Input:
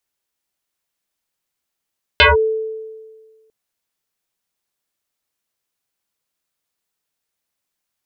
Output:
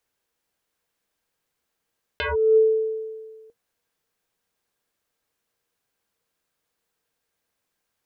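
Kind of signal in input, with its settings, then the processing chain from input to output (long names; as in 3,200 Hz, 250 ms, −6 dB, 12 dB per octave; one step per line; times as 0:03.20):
two-operator FM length 1.30 s, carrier 440 Hz, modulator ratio 1.17, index 6.9, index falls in 0.16 s linear, decay 1.59 s, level −5 dB
high-shelf EQ 2,600 Hz −6.5 dB
compressor whose output falls as the input rises −22 dBFS, ratio −1
hollow resonant body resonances 470/1,600 Hz, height 9 dB, ringing for 95 ms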